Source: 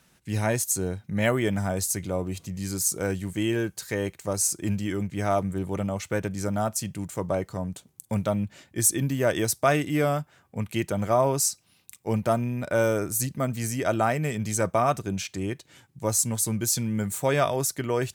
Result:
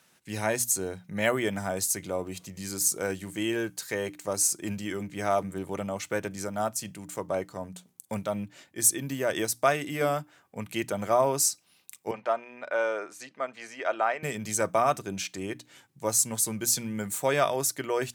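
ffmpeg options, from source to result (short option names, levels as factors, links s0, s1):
-filter_complex "[0:a]asettb=1/sr,asplit=3[s0][s1][s2];[s0]atrim=end=6.394[s3];[s1]atrim=start=6.39:end=10.01,asetpts=PTS-STARTPTS,afade=t=in:d=0.004:c=qsin,afade=t=out:st=3.616:d=0.004:c=qsin,tremolo=f=4:d=0.31[s4];[s2]atrim=start=10.006[s5];[s3][s4]acrossfade=d=0.004:c1=hsin:c2=qsin[s6];[s6][s5]acrossfade=d=0.004:c1=qsin:c2=hsin,asettb=1/sr,asplit=3[s7][s8][s9];[s7]atrim=end=12.114[s10];[s8]atrim=start=12.11:end=14.23,asetpts=PTS-STARTPTS,afade=t=in:d=0.004:c=qsin,afade=t=out:st=2.116:d=0.004:c=qsin,highpass=550,lowpass=3000[s11];[s9]atrim=start=14.226[s12];[s10][s11]acrossfade=d=0.004:c1=hsin:c2=qsin[s13];[s13][s12]acrossfade=d=0.004:c1=qsin:c2=hsin,highpass=93,lowshelf=f=220:g=-10,bandreject=f=60:t=h:w=6,bandreject=f=120:t=h:w=6,bandreject=f=180:t=h:w=6,bandreject=f=240:t=h:w=6,bandreject=f=300:t=h:w=6"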